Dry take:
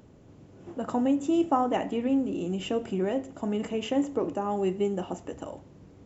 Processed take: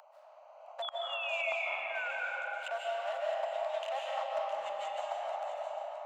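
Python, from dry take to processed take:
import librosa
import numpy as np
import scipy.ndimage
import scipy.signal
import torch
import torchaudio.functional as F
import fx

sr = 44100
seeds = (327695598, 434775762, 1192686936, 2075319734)

y = fx.wiener(x, sr, points=25)
y = scipy.signal.sosfilt(scipy.signal.butter(16, 600.0, 'highpass', fs=sr, output='sos'), y)
y = fx.high_shelf(y, sr, hz=5000.0, db=-5.0)
y = fx.spec_paint(y, sr, seeds[0], shape='fall', start_s=0.82, length_s=1.29, low_hz=1400.0, high_hz=3500.0, level_db=-39.0)
y = fx.gate_flip(y, sr, shuts_db=-26.0, range_db=-25)
y = y + 10.0 ** (-11.5 / 20.0) * np.pad(y, (int(663 * sr / 1000.0), 0))[:len(y)]
y = fx.rev_freeverb(y, sr, rt60_s=2.9, hf_ratio=0.55, predelay_ms=110, drr_db=-4.5)
y = fx.band_squash(y, sr, depth_pct=40)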